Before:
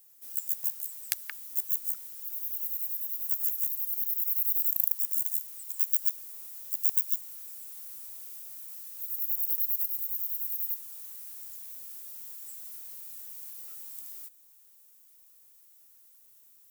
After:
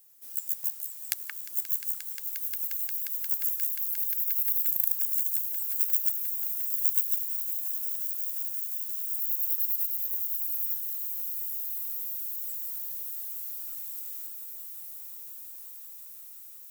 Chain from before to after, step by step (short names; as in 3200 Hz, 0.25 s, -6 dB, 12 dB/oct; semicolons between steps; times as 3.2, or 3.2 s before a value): swelling echo 0.177 s, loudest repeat 8, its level -13 dB